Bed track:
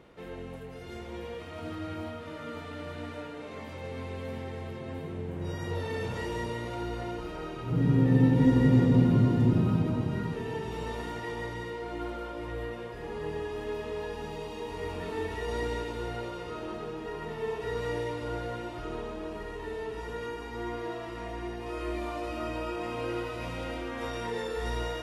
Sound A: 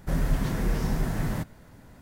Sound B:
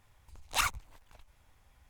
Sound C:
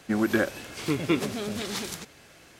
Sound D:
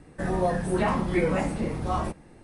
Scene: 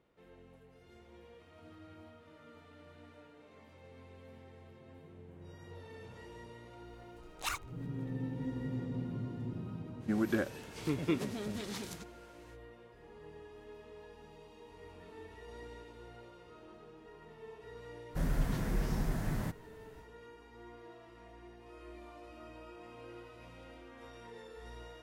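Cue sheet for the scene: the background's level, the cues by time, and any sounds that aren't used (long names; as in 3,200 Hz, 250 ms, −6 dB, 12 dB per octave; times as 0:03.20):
bed track −17 dB
0:06.88: mix in B −8 dB
0:09.99: mix in C −11.5 dB, fades 0.05 s + low-shelf EQ 400 Hz +7 dB
0:18.08: mix in A −7 dB, fades 0.10 s
not used: D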